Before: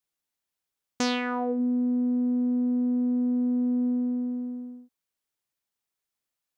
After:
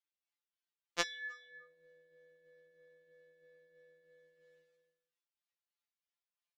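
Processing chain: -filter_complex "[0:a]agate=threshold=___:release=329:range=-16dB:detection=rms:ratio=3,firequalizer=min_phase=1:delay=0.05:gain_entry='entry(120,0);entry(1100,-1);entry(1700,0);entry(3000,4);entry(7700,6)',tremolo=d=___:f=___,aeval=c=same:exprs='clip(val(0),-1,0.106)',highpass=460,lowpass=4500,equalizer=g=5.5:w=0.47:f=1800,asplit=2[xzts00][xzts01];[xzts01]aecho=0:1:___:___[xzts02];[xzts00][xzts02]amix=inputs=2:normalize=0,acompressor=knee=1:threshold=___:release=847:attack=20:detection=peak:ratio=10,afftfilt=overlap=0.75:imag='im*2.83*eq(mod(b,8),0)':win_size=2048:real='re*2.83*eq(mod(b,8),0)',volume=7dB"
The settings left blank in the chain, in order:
-36dB, 0.53, 3.1, 307, 0.133, -44dB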